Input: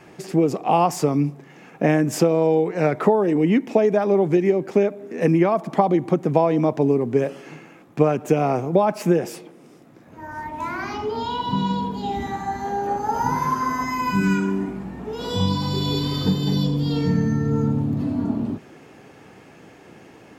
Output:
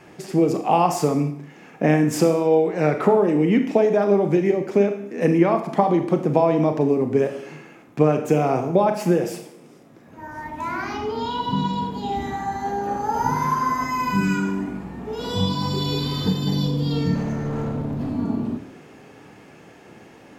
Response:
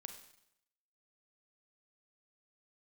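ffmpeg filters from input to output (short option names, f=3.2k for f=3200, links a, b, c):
-filter_complex "[0:a]asettb=1/sr,asplit=3[a][b][c];[a]atrim=end=17.154[d];[b]atrim=start=17.15:end=18.09,asetpts=PTS-STARTPTS,afade=t=in:d=0.004:c=qsin,afade=t=out:st=0.936:d=0.004:c=qsin,asoftclip=type=hard:threshold=-23dB[e];[c]atrim=start=18.086[f];[d][e]acrossfade=d=0.004:c1=hsin:c2=qsin[g];[g][f]acrossfade=d=0.004:c1=qsin:c2=hsin[h];[1:a]atrim=start_sample=2205,afade=t=out:st=0.4:d=0.01,atrim=end_sample=18081,asetrate=52920,aresample=44100[i];[h][i]afir=irnorm=-1:irlink=0,volume=7dB"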